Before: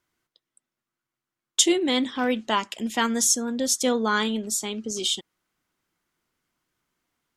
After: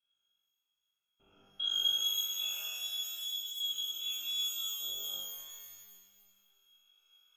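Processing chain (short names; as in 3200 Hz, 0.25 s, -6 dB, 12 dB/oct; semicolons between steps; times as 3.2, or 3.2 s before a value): stepped spectrum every 0.4 s; recorder AGC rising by 6.1 dB/s; bell 230 Hz +13 dB 0.25 oct; reverse; compressor, threshold -31 dBFS, peak gain reduction 14.5 dB; reverse; vowel filter u; air absorption 170 m; small resonant body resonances 320/470/1400 Hz, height 8 dB; inverted band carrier 3600 Hz; on a send: flutter echo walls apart 3.5 m, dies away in 0.74 s; on the sum: shimmer reverb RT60 1.8 s, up +12 st, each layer -2 dB, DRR 4.5 dB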